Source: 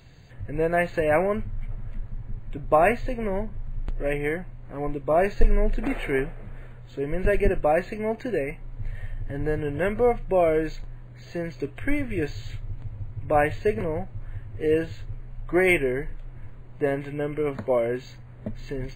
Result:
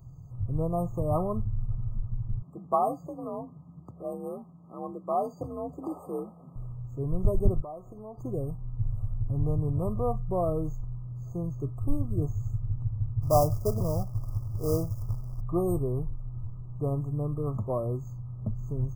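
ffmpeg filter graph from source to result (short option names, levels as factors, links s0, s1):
-filter_complex "[0:a]asettb=1/sr,asplit=3[s0][s1][s2];[s0]atrim=end=2.424[s3];[s1]atrim=start=2.42:end=6.56,asetpts=PTS-STARTPTS,afade=t=in:d=0.004:c=qsin,afade=t=out:st=4.136:d=0.004:c=qsin,highpass=190,highshelf=f=7400:g=-4,afreqshift=49[s4];[s2]atrim=start=6.556[s5];[s3][s4]acrossfade=d=0.004:c1=hsin:c2=qsin[s6];[s6][s5]acrossfade=d=0.004:c1=qsin:c2=hsin,asettb=1/sr,asplit=3[s7][s8][s9];[s7]atrim=end=7.624[s10];[s8]atrim=start=7.62:end=8.18,asetpts=PTS-STARTPTS,afade=t=in:d=0.004:c=qsin,afade=t=out:st=0.556:d=0.004:c=qsin,acompressor=threshold=0.0282:ratio=4:attack=3.2:release=140:knee=1:detection=peak,bass=f=250:g=-10,treble=f=4000:g=-7[s11];[s9]atrim=start=8.176[s12];[s10][s11]acrossfade=d=0.004:c1=hsin:c2=qsin[s13];[s13][s12]acrossfade=d=0.004:c1=qsin:c2=hsin,asettb=1/sr,asplit=3[s14][s15][s16];[s14]atrim=end=13.224[s17];[s15]atrim=start=13.22:end=15.41,asetpts=PTS-STARTPTS,afade=t=in:d=0.004:c=qsin,afade=t=out:st=2.186:d=0.004:c=qsin,equalizer=f=610:w=3.5:g=8.5,acrusher=bits=3:mode=log:mix=0:aa=0.000001[s18];[s16]atrim=start=15.406[s19];[s17][s18]acrossfade=d=0.004:c1=hsin:c2=qsin[s20];[s20][s19]acrossfade=d=0.004:c1=qsin:c2=hsin,afftfilt=real='re*(1-between(b*sr/4096,1300,4700))':imag='im*(1-between(b*sr/4096,1300,4700))':win_size=4096:overlap=0.75,equalizer=f=125:t=o:w=1:g=9,equalizer=f=250:t=o:w=1:g=-5,equalizer=f=500:t=o:w=1:g=-9,equalizer=f=1000:t=o:w=1:g=-5,equalizer=f=2000:t=o:w=1:g=10,equalizer=f=4000:t=o:w=1:g=-8,equalizer=f=8000:t=o:w=1:g=-7"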